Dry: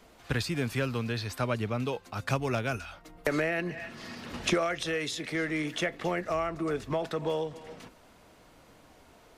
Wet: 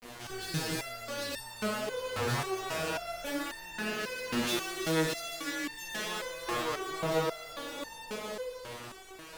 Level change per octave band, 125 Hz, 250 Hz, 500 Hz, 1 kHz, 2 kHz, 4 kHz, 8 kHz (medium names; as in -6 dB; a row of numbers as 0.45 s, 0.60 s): -6.5 dB, -3.5 dB, -3.0 dB, -0.5 dB, -2.0 dB, +1.5 dB, +4.0 dB